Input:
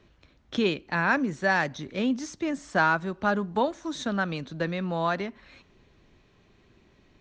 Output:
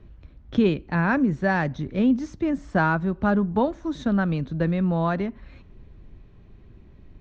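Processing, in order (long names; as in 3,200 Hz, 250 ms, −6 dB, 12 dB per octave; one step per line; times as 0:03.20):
RIAA equalisation playback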